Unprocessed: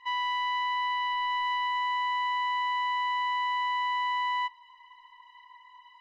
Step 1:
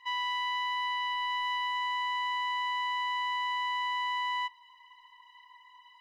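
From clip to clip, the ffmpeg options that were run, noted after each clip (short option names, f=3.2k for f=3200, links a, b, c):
-af "highshelf=f=2.4k:g=9,volume=-5dB"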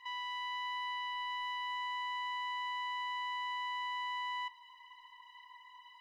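-af "alimiter=level_in=9.5dB:limit=-24dB:level=0:latency=1:release=11,volume=-9.5dB"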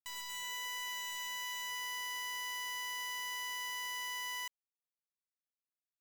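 -af "acrusher=bits=5:mix=0:aa=0.000001,volume=-4.5dB"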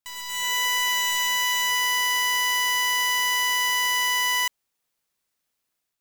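-af "dynaudnorm=f=150:g=5:m=10.5dB,volume=7dB"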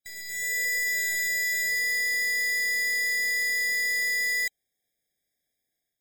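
-af "afftfilt=real='re*eq(mod(floor(b*sr/1024/790),2),0)':imag='im*eq(mod(floor(b*sr/1024/790),2),0)':win_size=1024:overlap=0.75"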